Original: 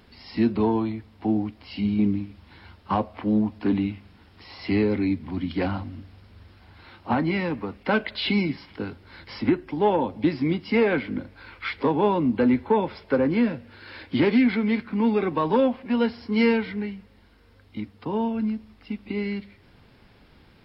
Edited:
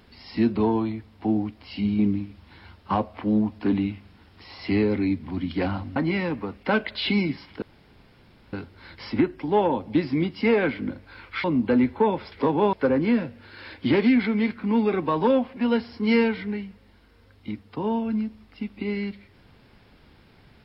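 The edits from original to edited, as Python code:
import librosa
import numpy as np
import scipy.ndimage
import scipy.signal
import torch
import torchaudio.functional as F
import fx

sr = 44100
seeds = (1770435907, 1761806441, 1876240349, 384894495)

y = fx.edit(x, sr, fx.cut(start_s=5.96, length_s=1.2),
    fx.insert_room_tone(at_s=8.82, length_s=0.91),
    fx.move(start_s=11.73, length_s=0.41, to_s=13.02), tone=tone)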